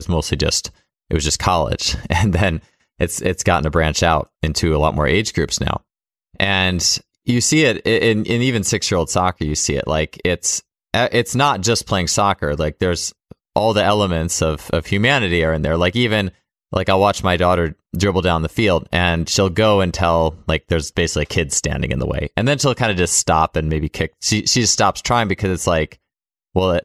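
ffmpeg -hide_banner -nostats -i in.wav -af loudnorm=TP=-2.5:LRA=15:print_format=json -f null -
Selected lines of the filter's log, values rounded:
"input_i" : "-17.6",
"input_tp" : "-2.2",
"input_lra" : "1.6",
"input_thresh" : "-27.8",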